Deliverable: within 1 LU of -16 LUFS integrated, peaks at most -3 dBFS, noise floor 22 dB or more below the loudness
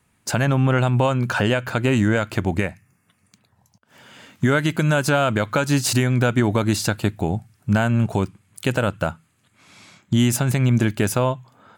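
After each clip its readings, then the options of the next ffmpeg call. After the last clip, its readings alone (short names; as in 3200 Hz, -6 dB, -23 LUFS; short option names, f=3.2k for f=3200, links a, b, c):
loudness -21.0 LUFS; peak -8.5 dBFS; loudness target -16.0 LUFS
-> -af "volume=5dB"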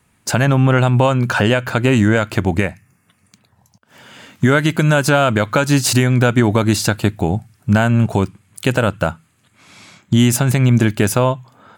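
loudness -16.0 LUFS; peak -3.5 dBFS; noise floor -60 dBFS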